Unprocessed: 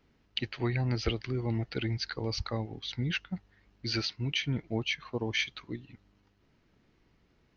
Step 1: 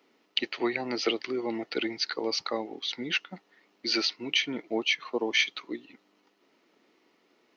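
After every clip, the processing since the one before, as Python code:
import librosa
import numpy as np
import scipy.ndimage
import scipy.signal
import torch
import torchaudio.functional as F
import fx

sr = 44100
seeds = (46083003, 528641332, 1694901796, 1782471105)

y = scipy.signal.sosfilt(scipy.signal.butter(4, 280.0, 'highpass', fs=sr, output='sos'), x)
y = fx.notch(y, sr, hz=1600.0, q=9.6)
y = y * librosa.db_to_amplitude(6.0)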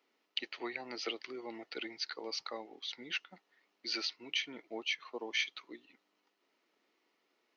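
y = fx.low_shelf(x, sr, hz=350.0, db=-10.5)
y = y * librosa.db_to_amplitude(-8.5)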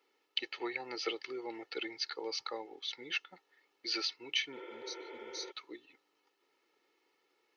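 y = fx.spec_repair(x, sr, seeds[0], start_s=4.59, length_s=0.89, low_hz=290.0, high_hz=3600.0, source='before')
y = y + 0.61 * np.pad(y, (int(2.3 * sr / 1000.0), 0))[:len(y)]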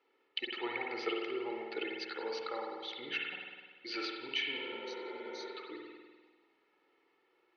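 y = scipy.signal.sosfilt(scipy.signal.butter(2, 3100.0, 'lowpass', fs=sr, output='sos'), x)
y = fx.rev_spring(y, sr, rt60_s=1.5, pass_ms=(49,), chirp_ms=45, drr_db=-0.5)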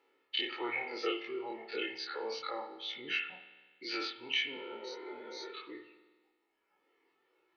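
y = fx.spec_dilate(x, sr, span_ms=60)
y = fx.dereverb_blind(y, sr, rt60_s=1.5)
y = y * librosa.db_to_amplitude(-1.0)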